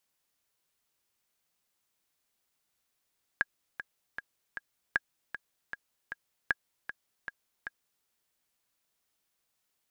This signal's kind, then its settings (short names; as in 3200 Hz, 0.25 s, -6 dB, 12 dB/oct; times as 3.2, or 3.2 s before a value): metronome 155 bpm, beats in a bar 4, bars 3, 1640 Hz, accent 11.5 dB -12.5 dBFS